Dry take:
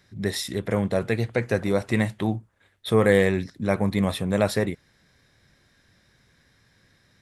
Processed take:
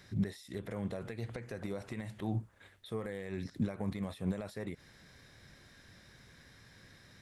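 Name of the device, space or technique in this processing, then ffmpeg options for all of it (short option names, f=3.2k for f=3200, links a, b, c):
de-esser from a sidechain: -filter_complex "[0:a]asplit=2[a][b];[b]highpass=f=6.9k:p=1,apad=whole_len=317967[c];[a][c]sidechaincompress=threshold=-57dB:ratio=10:attack=1.1:release=82,volume=3dB"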